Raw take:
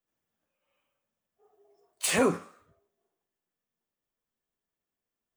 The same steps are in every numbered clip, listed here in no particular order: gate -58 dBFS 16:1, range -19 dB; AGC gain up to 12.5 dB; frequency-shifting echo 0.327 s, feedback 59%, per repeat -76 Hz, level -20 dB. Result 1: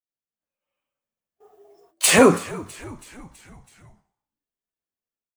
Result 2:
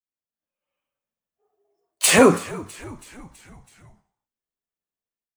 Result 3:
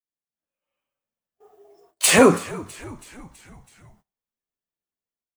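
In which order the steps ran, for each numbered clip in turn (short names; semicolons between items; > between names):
AGC > gate > frequency-shifting echo; gate > AGC > frequency-shifting echo; AGC > frequency-shifting echo > gate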